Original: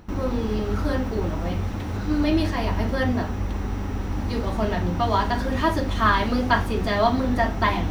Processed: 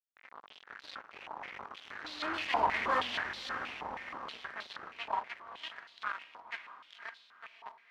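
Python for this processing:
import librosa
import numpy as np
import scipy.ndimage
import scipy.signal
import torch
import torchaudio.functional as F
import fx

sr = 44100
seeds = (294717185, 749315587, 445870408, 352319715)

p1 = fx.doppler_pass(x, sr, speed_mps=6, closest_m=1.3, pass_at_s=2.87)
p2 = fx.dynamic_eq(p1, sr, hz=1300.0, q=2.4, threshold_db=-50.0, ratio=4.0, max_db=-3)
p3 = fx.rider(p2, sr, range_db=5, speed_s=0.5)
p4 = p2 + F.gain(torch.from_numpy(p3), -1.0).numpy()
p5 = fx.fuzz(p4, sr, gain_db=26.0, gate_db=-32.0)
p6 = p5 + fx.echo_diffused(p5, sr, ms=544, feedback_pct=45, wet_db=-10, dry=0)
y = fx.filter_held_bandpass(p6, sr, hz=6.3, low_hz=920.0, high_hz=3900.0)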